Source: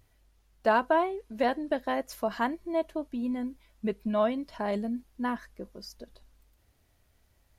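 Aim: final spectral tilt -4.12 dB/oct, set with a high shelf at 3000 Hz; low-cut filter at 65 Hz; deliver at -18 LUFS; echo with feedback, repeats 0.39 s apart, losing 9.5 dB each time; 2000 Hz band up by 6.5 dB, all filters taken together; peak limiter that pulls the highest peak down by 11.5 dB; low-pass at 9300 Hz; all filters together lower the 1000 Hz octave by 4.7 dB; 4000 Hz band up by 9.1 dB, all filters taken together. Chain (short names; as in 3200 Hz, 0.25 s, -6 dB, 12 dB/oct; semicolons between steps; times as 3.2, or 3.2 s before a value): HPF 65 Hz; LPF 9300 Hz; bell 1000 Hz -9 dB; bell 2000 Hz +9 dB; high shelf 3000 Hz +7.5 dB; bell 4000 Hz +3.5 dB; limiter -23.5 dBFS; feedback echo 0.39 s, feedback 33%, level -9.5 dB; gain +16.5 dB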